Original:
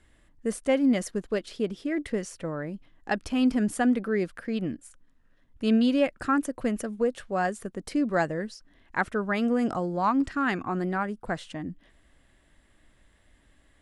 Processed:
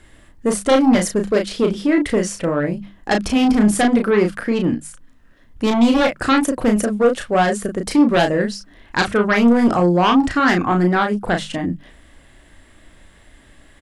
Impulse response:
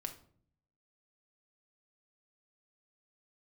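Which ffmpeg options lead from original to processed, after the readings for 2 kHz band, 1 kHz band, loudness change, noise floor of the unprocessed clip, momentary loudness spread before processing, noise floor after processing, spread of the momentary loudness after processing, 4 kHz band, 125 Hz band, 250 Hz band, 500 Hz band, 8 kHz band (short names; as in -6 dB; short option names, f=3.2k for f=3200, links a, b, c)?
+10.5 dB, +11.0 dB, +10.5 dB, -62 dBFS, 11 LU, -50 dBFS, 9 LU, +14.0 dB, +12.5 dB, +10.0 dB, +11.0 dB, +14.0 dB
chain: -filter_complex "[0:a]bandreject=f=50:t=h:w=6,bandreject=f=100:t=h:w=6,bandreject=f=150:t=h:w=6,bandreject=f=200:t=h:w=6,bandreject=f=250:t=h:w=6,aeval=exprs='0.282*sin(PI/2*2.82*val(0)/0.282)':c=same,asplit=2[a][b];[b]adelay=34,volume=-5dB[c];[a][c]amix=inputs=2:normalize=0"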